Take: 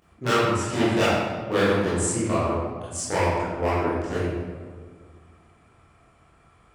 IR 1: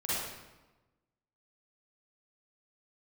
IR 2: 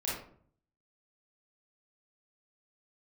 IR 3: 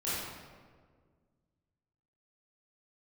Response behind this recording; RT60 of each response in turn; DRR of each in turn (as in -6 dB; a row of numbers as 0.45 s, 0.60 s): 3; 1.1 s, 0.55 s, 1.7 s; -10.5 dB, -7.5 dB, -11.5 dB